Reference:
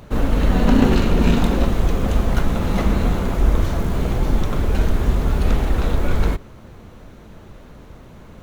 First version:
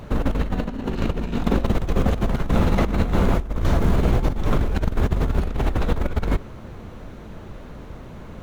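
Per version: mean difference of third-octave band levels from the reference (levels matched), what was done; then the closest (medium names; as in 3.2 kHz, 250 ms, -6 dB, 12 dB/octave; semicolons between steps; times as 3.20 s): 4.5 dB: treble shelf 4.5 kHz -6 dB; compressor with a negative ratio -19 dBFS, ratio -0.5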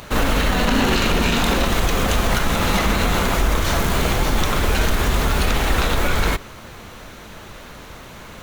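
7.0 dB: tilt shelf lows -7.5 dB, about 770 Hz; peak limiter -15.5 dBFS, peak gain reduction 10 dB; trim +7 dB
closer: first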